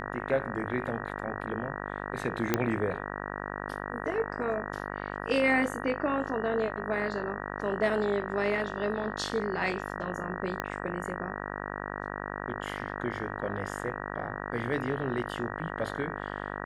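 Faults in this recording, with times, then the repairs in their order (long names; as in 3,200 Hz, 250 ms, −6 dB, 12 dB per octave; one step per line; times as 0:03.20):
mains buzz 50 Hz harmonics 38 −37 dBFS
0:02.54: click −10 dBFS
0:10.60: click −16 dBFS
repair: click removal
hum removal 50 Hz, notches 38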